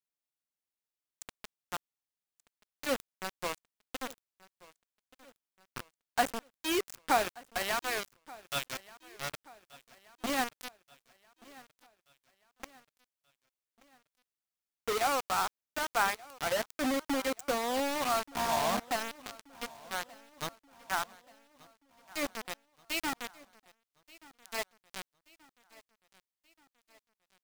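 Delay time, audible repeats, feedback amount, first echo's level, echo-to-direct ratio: 1.18 s, 3, 51%, -22.0 dB, -20.5 dB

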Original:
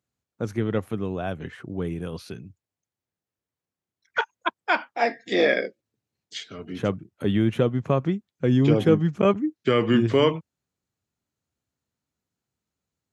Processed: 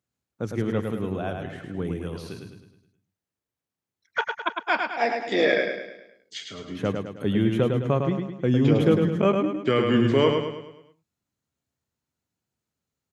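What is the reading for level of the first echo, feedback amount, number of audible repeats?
-5.0 dB, 47%, 5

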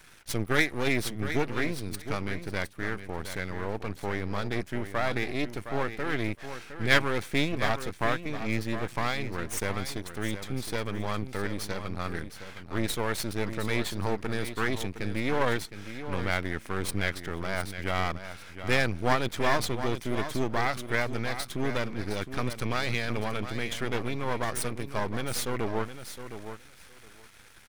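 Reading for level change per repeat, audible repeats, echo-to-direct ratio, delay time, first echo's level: -16.5 dB, 2, -10.5 dB, 0.713 s, -10.5 dB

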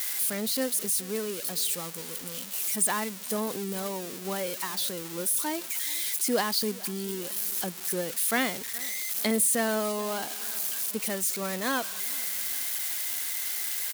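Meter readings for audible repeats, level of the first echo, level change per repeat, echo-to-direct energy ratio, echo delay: 2, -21.5 dB, -6.0 dB, -20.5 dB, 0.427 s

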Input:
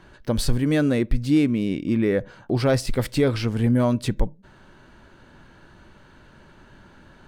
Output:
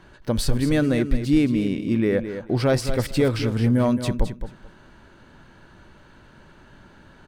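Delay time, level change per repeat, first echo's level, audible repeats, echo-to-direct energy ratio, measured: 0.217 s, -15.0 dB, -10.0 dB, 2, -10.0 dB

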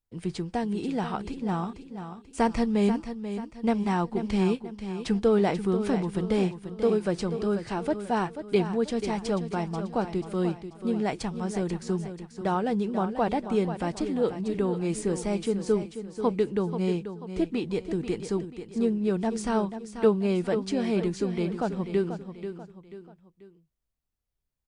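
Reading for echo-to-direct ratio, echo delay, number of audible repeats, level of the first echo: -9.5 dB, 0.487 s, 3, -10.0 dB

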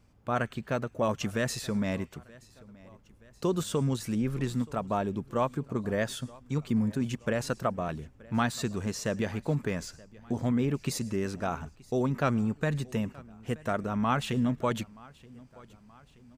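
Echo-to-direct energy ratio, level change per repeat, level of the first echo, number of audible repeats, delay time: -22.0 dB, -5.5 dB, -23.0 dB, 2, 0.926 s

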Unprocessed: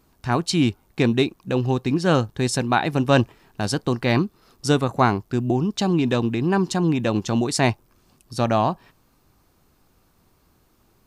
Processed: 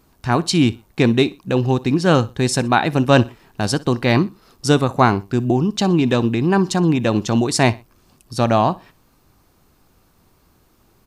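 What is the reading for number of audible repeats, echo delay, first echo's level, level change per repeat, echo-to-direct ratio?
2, 61 ms, -20.5 dB, -10.5 dB, -20.0 dB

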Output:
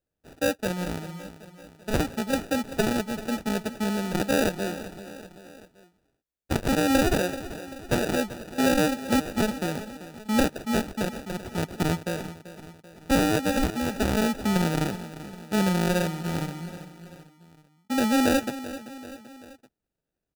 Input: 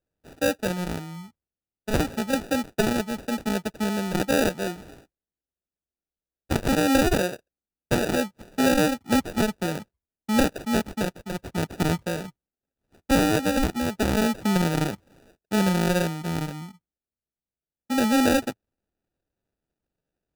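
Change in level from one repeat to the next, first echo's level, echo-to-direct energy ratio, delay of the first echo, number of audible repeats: -5.5 dB, -14.5 dB, -13.0 dB, 0.387 s, 3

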